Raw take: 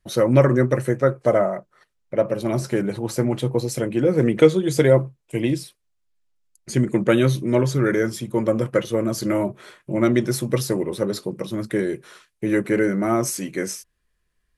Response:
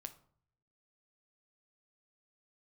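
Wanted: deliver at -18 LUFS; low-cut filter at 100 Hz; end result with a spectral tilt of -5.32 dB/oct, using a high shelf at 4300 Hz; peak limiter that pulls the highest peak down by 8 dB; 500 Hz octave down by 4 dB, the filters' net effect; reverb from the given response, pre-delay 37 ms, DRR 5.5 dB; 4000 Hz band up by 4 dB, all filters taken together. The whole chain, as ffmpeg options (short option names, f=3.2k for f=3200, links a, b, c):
-filter_complex "[0:a]highpass=100,equalizer=f=500:t=o:g=-5,equalizer=f=4k:t=o:g=3,highshelf=f=4.3k:g=3.5,alimiter=limit=-12dB:level=0:latency=1,asplit=2[a][b];[1:a]atrim=start_sample=2205,adelay=37[c];[b][c]afir=irnorm=-1:irlink=0,volume=-0.5dB[d];[a][d]amix=inputs=2:normalize=0,volume=5dB"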